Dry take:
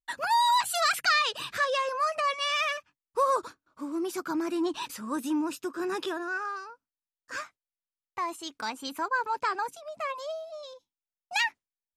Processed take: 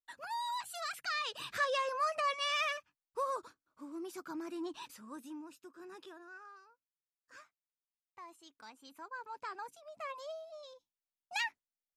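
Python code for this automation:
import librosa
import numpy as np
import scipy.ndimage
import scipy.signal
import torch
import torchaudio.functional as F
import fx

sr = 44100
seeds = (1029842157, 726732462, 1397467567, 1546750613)

y = fx.gain(x, sr, db=fx.line((1.01, -15.0), (1.53, -5.5), (2.66, -5.5), (3.38, -12.0), (4.83, -12.0), (5.47, -19.5), (8.83, -19.5), (10.18, -8.5)))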